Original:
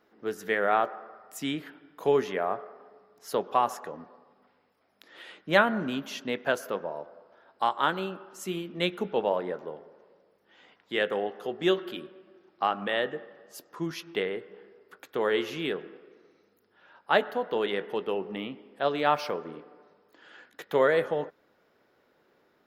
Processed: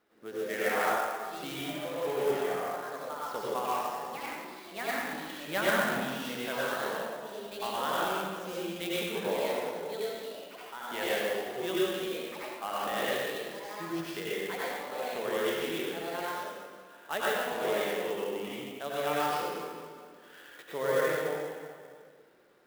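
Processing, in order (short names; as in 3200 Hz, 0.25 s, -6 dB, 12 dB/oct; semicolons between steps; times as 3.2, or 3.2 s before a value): pre-emphasis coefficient 0.8; plate-style reverb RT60 1.6 s, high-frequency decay 0.9×, pre-delay 80 ms, DRR -7.5 dB; in parallel at +0.5 dB: compressor, threshold -52 dBFS, peak gain reduction 26.5 dB; on the sum: echoes that change speed 0.113 s, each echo +3 st, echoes 3, each echo -6 dB; air absorption 150 m; on a send: flutter echo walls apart 11.5 m, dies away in 0.27 s; on the sum: clock jitter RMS 0.026 ms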